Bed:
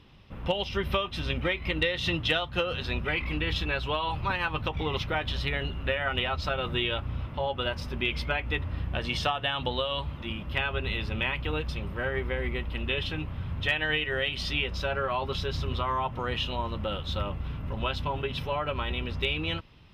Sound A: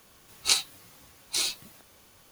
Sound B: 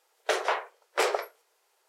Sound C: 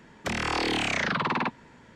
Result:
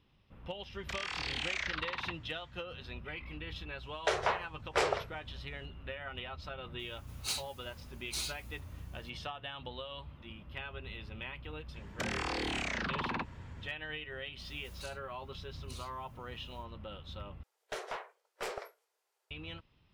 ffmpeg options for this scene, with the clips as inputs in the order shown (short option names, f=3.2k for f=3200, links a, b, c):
-filter_complex "[3:a]asplit=2[a][b];[2:a]asplit=2[c][d];[1:a]asplit=2[e][f];[0:a]volume=-14dB[g];[a]bandpass=f=3.4k:t=q:w=0.74:csg=0[h];[c]lowpass=7.5k[i];[e]asoftclip=type=tanh:threshold=-20dB[j];[b]acompressor=threshold=-29dB:ratio=6:attack=13:release=131:knee=1:detection=rms[k];[f]acompressor=threshold=-37dB:ratio=12:attack=1.5:release=874:knee=1:detection=rms[l];[d]aeval=exprs='clip(val(0),-1,0.0668)':c=same[m];[g]asplit=2[n][o];[n]atrim=end=17.434[p];[m]atrim=end=1.88,asetpts=PTS-STARTPTS,volume=-12.5dB[q];[o]atrim=start=19.306[r];[h]atrim=end=1.95,asetpts=PTS-STARTPTS,volume=-6.5dB,afade=t=in:d=0.004:c=hsin,afade=t=out:st=1.946:d=0.004:c=hsin,adelay=630[s];[i]atrim=end=1.88,asetpts=PTS-STARTPTS,volume=-4dB,afade=t=in:d=0.004:c=hsin,afade=t=out:st=1.876:d=0.004:c=hsin,adelay=3780[t];[j]atrim=end=2.31,asetpts=PTS-STARTPTS,volume=-8.5dB,afade=t=in:d=0.004:c=hsin,afade=t=out:st=2.306:d=0.004:c=hsin,adelay=6790[u];[k]atrim=end=1.95,asetpts=PTS-STARTPTS,volume=-4dB,afade=t=in:d=0.004:c=hsin,afade=t=out:st=1.946:d=0.004:c=hsin,adelay=11740[v];[l]atrim=end=2.31,asetpts=PTS-STARTPTS,volume=-6.5dB,afade=t=in:d=0.1,afade=t=out:st=2.21:d=0.1,adelay=14360[w];[p][q]acrossfade=d=0.004:c1=hsin:c2=hsin[x];[x][r]acrossfade=d=0.004:c1=hsin:c2=hsin[y];[y][s][t][u][v][w]amix=inputs=6:normalize=0"